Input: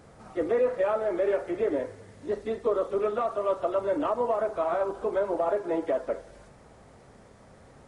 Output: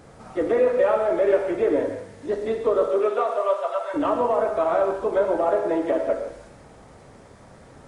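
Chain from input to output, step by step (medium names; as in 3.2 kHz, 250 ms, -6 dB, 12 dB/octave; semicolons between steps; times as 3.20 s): 2.87–3.93 s: high-pass 220 Hz -> 850 Hz 24 dB/octave; gated-style reverb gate 210 ms flat, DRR 4.5 dB; trim +4.5 dB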